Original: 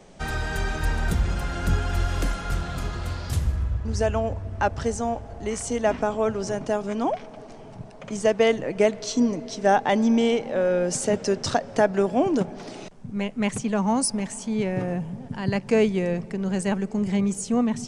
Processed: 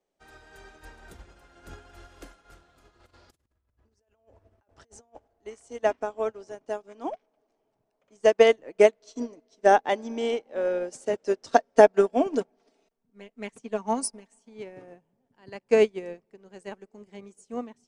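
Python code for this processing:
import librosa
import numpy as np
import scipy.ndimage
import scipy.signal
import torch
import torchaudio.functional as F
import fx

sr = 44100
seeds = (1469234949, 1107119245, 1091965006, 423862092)

y = fx.over_compress(x, sr, threshold_db=-30.0, ratio=-0.5, at=(3.0, 5.28))
y = fx.comb(y, sr, ms=4.4, depth=0.51, at=(11.48, 14.49))
y = fx.low_shelf_res(y, sr, hz=240.0, db=-8.5, q=1.5)
y = fx.upward_expand(y, sr, threshold_db=-37.0, expansion=2.5)
y = y * 10.0 ** (4.0 / 20.0)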